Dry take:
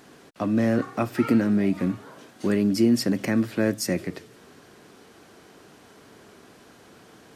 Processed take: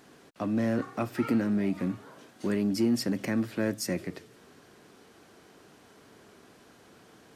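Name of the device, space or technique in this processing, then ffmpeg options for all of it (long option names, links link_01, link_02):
parallel distortion: -filter_complex "[0:a]asplit=2[link_01][link_02];[link_02]asoftclip=type=hard:threshold=-22dB,volume=-9dB[link_03];[link_01][link_03]amix=inputs=2:normalize=0,volume=-7.5dB"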